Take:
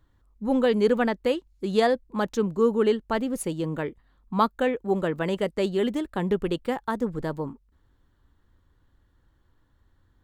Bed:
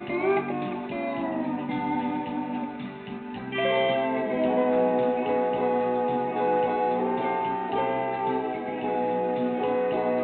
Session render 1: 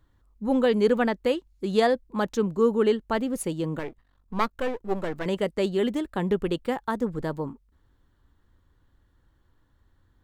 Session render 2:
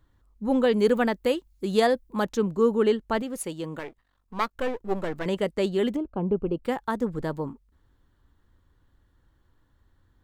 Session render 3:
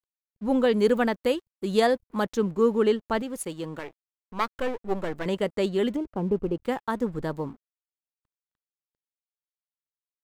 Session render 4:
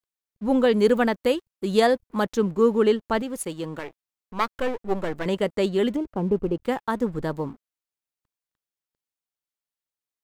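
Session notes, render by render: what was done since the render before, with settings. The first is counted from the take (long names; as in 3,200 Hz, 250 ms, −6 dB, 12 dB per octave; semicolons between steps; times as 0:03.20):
0:03.79–0:05.26: gain on one half-wave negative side −12 dB
0:00.78–0:02.25: high-shelf EQ 9,900 Hz +11 dB; 0:03.22–0:04.55: low-shelf EQ 410 Hz −8 dB; 0:05.96–0:06.64: moving average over 24 samples
dead-zone distortion −53 dBFS
level +2.5 dB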